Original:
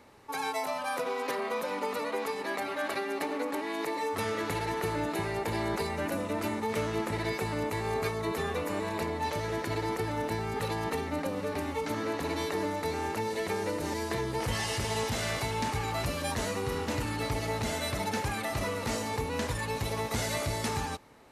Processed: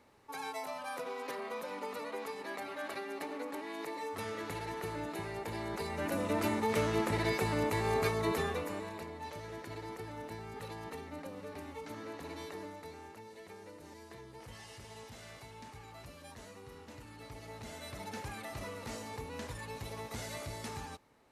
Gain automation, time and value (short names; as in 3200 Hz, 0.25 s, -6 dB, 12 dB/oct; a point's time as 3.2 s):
5.7 s -8 dB
6.3 s 0 dB
8.33 s 0 dB
9.04 s -12 dB
12.49 s -12 dB
13.21 s -19 dB
17.06 s -19 dB
18.21 s -10.5 dB